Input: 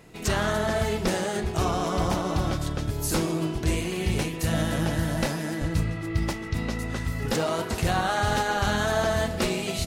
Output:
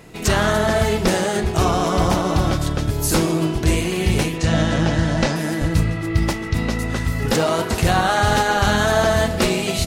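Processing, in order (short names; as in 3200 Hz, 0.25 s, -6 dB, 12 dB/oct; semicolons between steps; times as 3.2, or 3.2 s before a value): 4.38–5.36 LPF 7100 Hz 24 dB/oct; gain +7.5 dB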